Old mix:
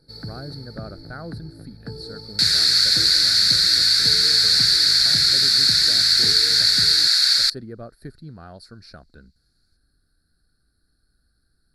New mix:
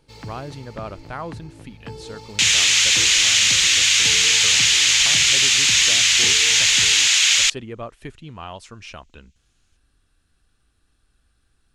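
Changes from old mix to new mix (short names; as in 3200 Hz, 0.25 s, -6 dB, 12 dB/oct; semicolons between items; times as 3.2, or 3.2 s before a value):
speech +3.0 dB; master: remove EQ curve 100 Hz 0 dB, 160 Hz +4 dB, 730 Hz -3 dB, 1000 Hz -16 dB, 1500 Hz +4 dB, 3000 Hz -29 dB, 4400 Hz +12 dB, 6500 Hz -17 dB, 11000 Hz +7 dB, 16000 Hz -9 dB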